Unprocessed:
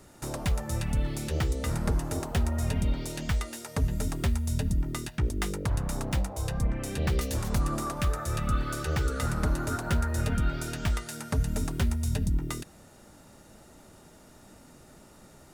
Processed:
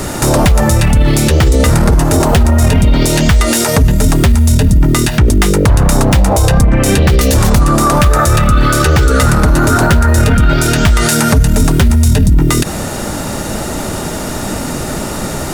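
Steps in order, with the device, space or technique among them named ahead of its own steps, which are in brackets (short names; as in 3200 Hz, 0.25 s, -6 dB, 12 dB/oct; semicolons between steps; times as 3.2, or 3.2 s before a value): loud club master (compressor 3:1, threshold -28 dBFS, peak gain reduction 6.5 dB; hard clip -23.5 dBFS, distortion -27 dB; maximiser +35 dB); gain -1 dB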